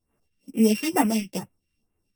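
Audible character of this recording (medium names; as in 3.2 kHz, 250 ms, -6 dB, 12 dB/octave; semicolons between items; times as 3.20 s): a buzz of ramps at a fixed pitch in blocks of 16 samples; phasing stages 2, 2.2 Hz, lowest notch 680–4300 Hz; tremolo saw up 3.8 Hz, depth 40%; a shimmering, thickened sound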